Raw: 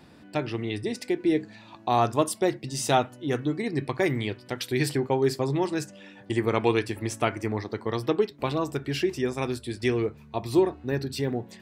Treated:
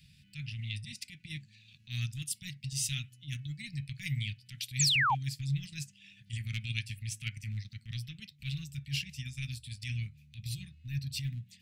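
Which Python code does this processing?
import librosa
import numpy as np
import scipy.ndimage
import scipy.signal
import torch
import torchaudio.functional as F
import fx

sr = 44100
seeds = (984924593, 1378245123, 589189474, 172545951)

y = fx.transient(x, sr, attack_db=-10, sustain_db=-6)
y = scipy.signal.sosfilt(scipy.signal.ellip(3, 1.0, 50, [150.0, 2500.0], 'bandstop', fs=sr, output='sos'), y)
y = fx.spec_paint(y, sr, seeds[0], shape='fall', start_s=4.79, length_s=0.36, low_hz=730.0, high_hz=8100.0, level_db=-27.0)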